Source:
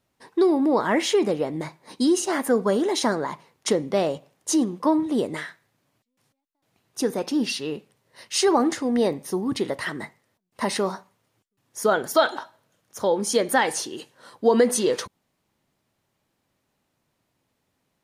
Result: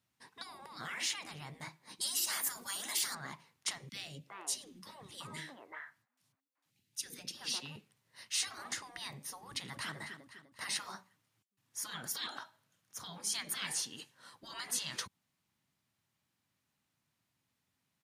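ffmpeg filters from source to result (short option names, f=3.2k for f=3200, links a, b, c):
-filter_complex "[0:a]asettb=1/sr,asplit=3[a][b][c];[a]atrim=end=2.014[d];[b]atrim=start=2.01:end=3.15,asetpts=PTS-STARTPTS,afade=t=in:d=0.004:c=qsin,afade=t=out:st=1.136:d=0.004:c=qsin,aemphasis=mode=production:type=75fm[e];[c]atrim=start=3.146[f];[d][e]acrossfade=d=0.004:c1=hsin:c2=qsin[g];[g][f]acrossfade=d=0.004:c1=qsin:c2=hsin,asettb=1/sr,asplit=3[h][i][j];[h]atrim=end=3.894[k];[i]atrim=start=3.89:end=7.76,asetpts=PTS-STARTPTS,afade=t=in:d=0.004:c=qsin,afade=t=out:st=3.866:d=0.004:c=qsin,acrossover=split=470|1900[l][m][n];[l]adelay=30[o];[m]adelay=380[p];[o][p][n]amix=inputs=3:normalize=0,atrim=end_sample=170667[q];[j]atrim=start=7.756[r];[k][q]acrossfade=d=0.004:c1=hsin:c2=qsin[s];[s][r]acrossfade=d=0.004:c1=qsin:c2=hsin,asplit=2[t][u];[u]afade=t=in:st=9.45:d=0.01,afade=t=out:st=9.95:d=0.01,aecho=0:1:250|500|750|1000|1250:0.266073|0.119733|0.0538797|0.0242459|0.0109106[v];[t][v]amix=inputs=2:normalize=0,highpass=85,afftfilt=real='re*lt(hypot(re,im),0.141)':imag='im*lt(hypot(re,im),0.141)':win_size=1024:overlap=0.75,equalizer=f=480:w=0.79:g=-12,volume=-5.5dB"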